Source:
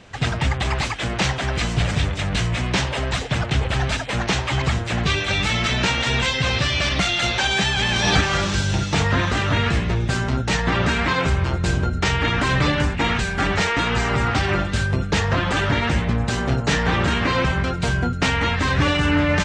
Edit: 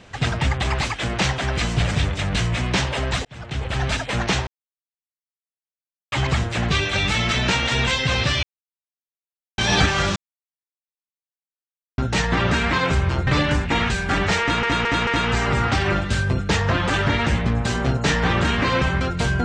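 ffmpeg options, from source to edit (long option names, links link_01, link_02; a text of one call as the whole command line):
ffmpeg -i in.wav -filter_complex "[0:a]asplit=11[link_01][link_02][link_03][link_04][link_05][link_06][link_07][link_08][link_09][link_10][link_11];[link_01]atrim=end=3.25,asetpts=PTS-STARTPTS,afade=type=out:start_time=3.246:duration=0.004:curve=hsin[link_12];[link_02]atrim=start=3.25:end=4.47,asetpts=PTS-STARTPTS,afade=type=in:duration=0.67,afade=type=out:start_time=1.216:duration=0.004:curve=hsin,apad=pad_dur=1.65[link_13];[link_03]atrim=start=4.47:end=6.78,asetpts=PTS-STARTPTS,afade=type=in:duration=0.004:curve=hsin,afade=type=out:start_time=2.306:duration=0.004:curve=hsin[link_14];[link_04]atrim=start=6.78:end=7.93,asetpts=PTS-STARTPTS,volume=0[link_15];[link_05]atrim=start=7.93:end=8.51,asetpts=PTS-STARTPTS,afade=type=in:duration=0.004:curve=hsin,afade=type=out:start_time=0.576:duration=0.004:curve=hsin[link_16];[link_06]atrim=start=8.51:end=10.33,asetpts=PTS-STARTPTS,volume=0[link_17];[link_07]atrim=start=10.33:end=11.622,asetpts=PTS-STARTPTS,afade=type=in:duration=0.004:curve=hsin[link_18];[link_08]atrim=start=12.558:end=13.922[link_19];[link_09]atrim=start=13.698:end=13.922[link_20];[link_10]atrim=start=13.698:end=13.922[link_21];[link_11]atrim=start=13.698[link_22];[link_12][link_13][link_14][link_15][link_16][link_17][link_18]concat=n=7:v=0:a=1[link_23];[link_23][link_19]acrossfade=duration=0.004:curve1=hsin:curve2=hsin[link_24];[link_24][link_20]acrossfade=duration=0.004:curve1=hsin:curve2=hsin[link_25];[link_25][link_21]acrossfade=duration=0.004:curve1=hsin:curve2=hsin[link_26];[link_26][link_22]acrossfade=duration=0.004:curve1=hsin:curve2=hsin" out.wav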